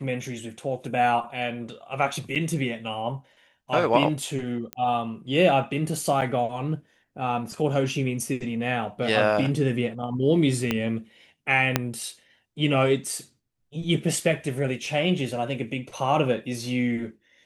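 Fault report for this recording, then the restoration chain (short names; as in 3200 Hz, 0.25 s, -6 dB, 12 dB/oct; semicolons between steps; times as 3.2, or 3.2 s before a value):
2.35–2.36 gap 7.2 ms
4.73 pop -15 dBFS
6.21–6.22 gap 6.9 ms
10.71 pop -10 dBFS
11.76 pop -4 dBFS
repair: de-click; interpolate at 2.35, 7.2 ms; interpolate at 6.21, 6.9 ms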